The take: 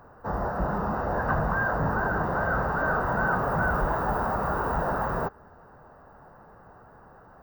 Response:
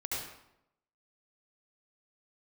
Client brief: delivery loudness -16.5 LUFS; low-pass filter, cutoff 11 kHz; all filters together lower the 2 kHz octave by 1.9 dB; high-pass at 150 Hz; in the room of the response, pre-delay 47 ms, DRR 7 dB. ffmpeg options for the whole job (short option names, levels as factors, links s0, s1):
-filter_complex "[0:a]highpass=150,lowpass=11000,equalizer=f=2000:t=o:g=-3,asplit=2[s0][s1];[1:a]atrim=start_sample=2205,adelay=47[s2];[s1][s2]afir=irnorm=-1:irlink=0,volume=0.299[s3];[s0][s3]amix=inputs=2:normalize=0,volume=3.55"